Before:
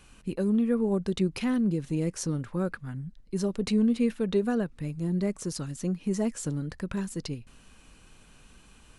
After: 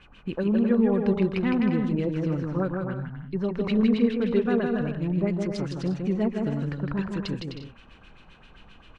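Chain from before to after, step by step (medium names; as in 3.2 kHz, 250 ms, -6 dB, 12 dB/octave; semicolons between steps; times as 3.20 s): LFO low-pass sine 7.6 Hz 720–3600 Hz; bouncing-ball echo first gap 160 ms, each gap 0.6×, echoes 5; trim +1 dB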